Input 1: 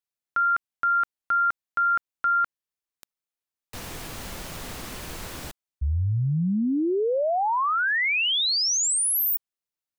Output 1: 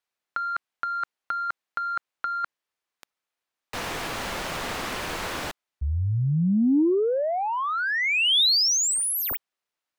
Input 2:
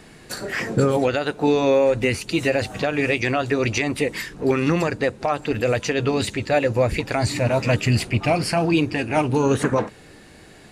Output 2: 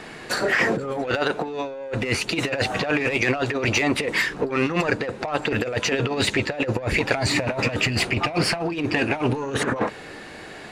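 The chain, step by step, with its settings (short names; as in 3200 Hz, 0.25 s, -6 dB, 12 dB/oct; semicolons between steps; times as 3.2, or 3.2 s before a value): overdrive pedal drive 14 dB, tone 2100 Hz, clips at -8.5 dBFS; negative-ratio compressor -22 dBFS, ratio -0.5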